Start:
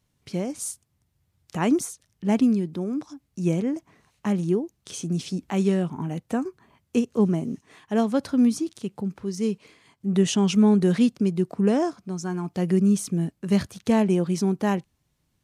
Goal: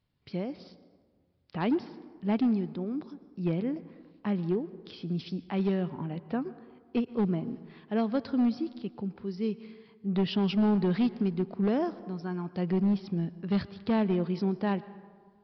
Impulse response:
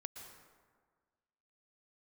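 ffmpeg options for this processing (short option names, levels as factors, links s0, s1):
-filter_complex "[0:a]asoftclip=type=hard:threshold=0.168,asplit=2[s0][s1];[1:a]atrim=start_sample=2205[s2];[s1][s2]afir=irnorm=-1:irlink=0,volume=0.562[s3];[s0][s3]amix=inputs=2:normalize=0,aresample=11025,aresample=44100,volume=0.398"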